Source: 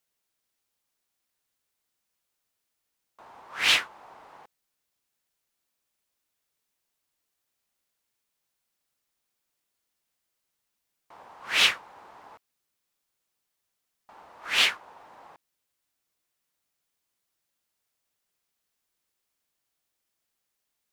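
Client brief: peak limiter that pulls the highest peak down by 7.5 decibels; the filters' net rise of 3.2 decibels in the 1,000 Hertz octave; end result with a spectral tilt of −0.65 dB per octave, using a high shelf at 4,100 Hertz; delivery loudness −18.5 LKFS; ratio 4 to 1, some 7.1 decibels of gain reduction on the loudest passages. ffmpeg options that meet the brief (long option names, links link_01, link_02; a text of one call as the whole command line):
ffmpeg -i in.wav -af "equalizer=frequency=1000:width_type=o:gain=3.5,highshelf=frequency=4100:gain=6.5,acompressor=threshold=-22dB:ratio=4,volume=15dB,alimiter=limit=-3.5dB:level=0:latency=1" out.wav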